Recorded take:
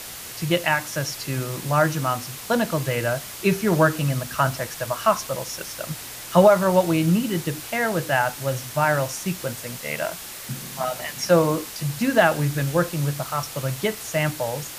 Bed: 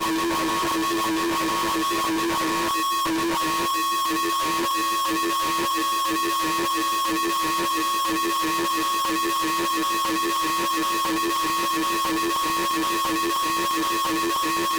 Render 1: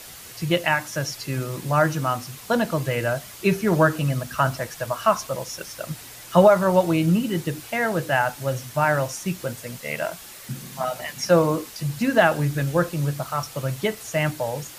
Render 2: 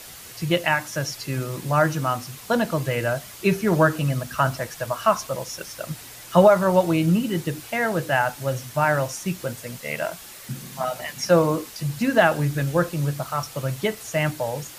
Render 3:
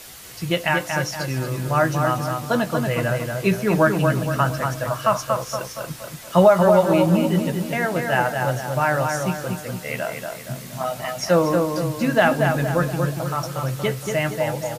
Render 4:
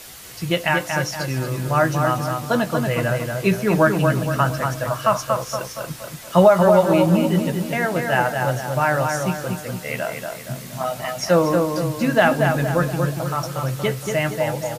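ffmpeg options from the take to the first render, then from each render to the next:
ffmpeg -i in.wav -af "afftdn=noise_reduction=6:noise_floor=-37" out.wav
ffmpeg -i in.wav -af anull out.wav
ffmpeg -i in.wav -filter_complex "[0:a]asplit=2[link_01][link_02];[link_02]adelay=16,volume=-11dB[link_03];[link_01][link_03]amix=inputs=2:normalize=0,asplit=2[link_04][link_05];[link_05]adelay=234,lowpass=frequency=2500:poles=1,volume=-4dB,asplit=2[link_06][link_07];[link_07]adelay=234,lowpass=frequency=2500:poles=1,volume=0.49,asplit=2[link_08][link_09];[link_09]adelay=234,lowpass=frequency=2500:poles=1,volume=0.49,asplit=2[link_10][link_11];[link_11]adelay=234,lowpass=frequency=2500:poles=1,volume=0.49,asplit=2[link_12][link_13];[link_13]adelay=234,lowpass=frequency=2500:poles=1,volume=0.49,asplit=2[link_14][link_15];[link_15]adelay=234,lowpass=frequency=2500:poles=1,volume=0.49[link_16];[link_04][link_06][link_08][link_10][link_12][link_14][link_16]amix=inputs=7:normalize=0" out.wav
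ffmpeg -i in.wav -af "volume=1dB,alimiter=limit=-3dB:level=0:latency=1" out.wav

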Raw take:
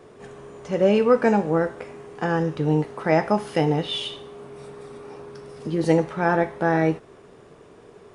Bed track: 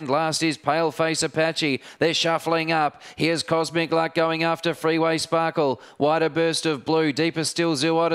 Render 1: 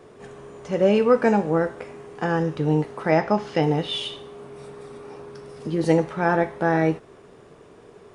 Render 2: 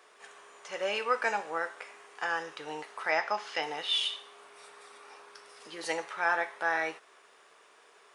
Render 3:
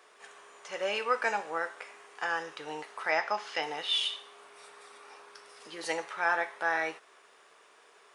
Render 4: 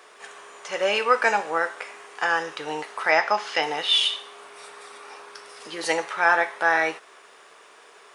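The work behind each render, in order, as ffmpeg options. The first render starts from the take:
ffmpeg -i in.wav -filter_complex "[0:a]asettb=1/sr,asplit=3[link_01][link_02][link_03];[link_01]atrim=end=3.114[link_04];[link_02]atrim=start=3.11:end=3.63,asetpts=PTS-STARTPTS,afade=type=in:duration=0.004:curve=qsin,afade=type=out:start_time=0.516:duration=0.004:curve=qsin,lowpass=frequency=6600:width=0.5412,lowpass=frequency=6600:width=1.3066[link_05];[link_03]atrim=start=3.626[link_06];[link_04][link_05]acrossfade=duration=0.004:curve1=hsin:curve2=qsin[link_07];[link_07][link_06]acrossfade=duration=0.004:curve1=qsin:curve2=hsin" out.wav
ffmpeg -i in.wav -af "highpass=1200" out.wav
ffmpeg -i in.wav -af anull out.wav
ffmpeg -i in.wav -af "volume=9dB" out.wav

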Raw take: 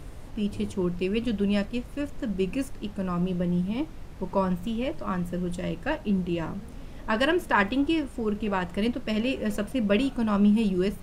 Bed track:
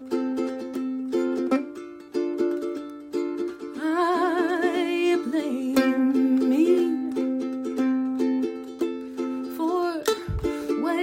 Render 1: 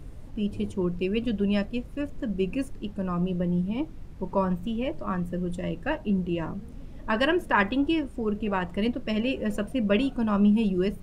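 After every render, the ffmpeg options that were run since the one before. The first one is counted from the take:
ffmpeg -i in.wav -af "afftdn=noise_reduction=8:noise_floor=-42" out.wav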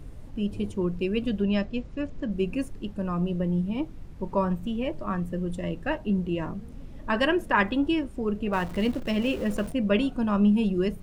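ffmpeg -i in.wav -filter_complex "[0:a]asettb=1/sr,asplit=3[link_01][link_02][link_03];[link_01]atrim=end=1.424[link_04];[link_02]atrim=start=1.42:end=2.32,asetpts=PTS-STARTPTS,afade=type=in:duration=0.004:curve=qsin,afade=type=out:start_time=0.896:duration=0.004:curve=qsin,lowpass=frequency=6900:width=0.5412,lowpass=frequency=6900:width=1.3066[link_05];[link_03]atrim=start=2.316[link_06];[link_04][link_05]acrossfade=duration=0.004:curve1=hsin:curve2=qsin[link_07];[link_07][link_06]acrossfade=duration=0.004:curve1=qsin:curve2=hsin,asettb=1/sr,asplit=3[link_08][link_09][link_10];[link_08]atrim=end=8.534[link_11];[link_09]atrim=start=8.53:end=9.72,asetpts=PTS-STARTPTS,afade=type=in:duration=0.004:curve=qsin,afade=type=out:start_time=1.186:duration=0.004:curve=qsin,aeval=exprs='val(0)+0.5*0.0133*sgn(val(0))':channel_layout=same[link_12];[link_10]atrim=start=9.716[link_13];[link_11][link_12]acrossfade=duration=0.004:curve1=hsin:curve2=qsin[link_14];[link_14][link_13]acrossfade=duration=0.004:curve1=qsin:curve2=hsin" out.wav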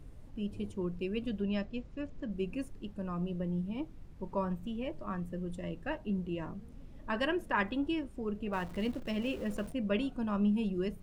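ffmpeg -i in.wav -af "volume=-8.5dB" out.wav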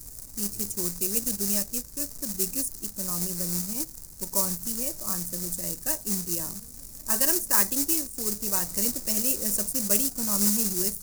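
ffmpeg -i in.wav -af "acrusher=bits=3:mode=log:mix=0:aa=0.000001,aexciter=amount=15.2:drive=6.2:freq=4900" out.wav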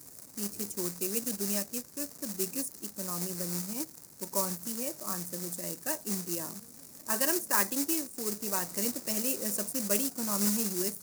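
ffmpeg -i in.wav -af "highpass=170,bass=frequency=250:gain=-2,treble=frequency=4000:gain=-7" out.wav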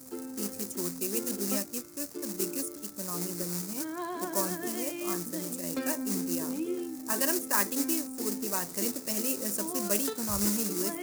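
ffmpeg -i in.wav -i bed.wav -filter_complex "[1:a]volume=-14dB[link_01];[0:a][link_01]amix=inputs=2:normalize=0" out.wav

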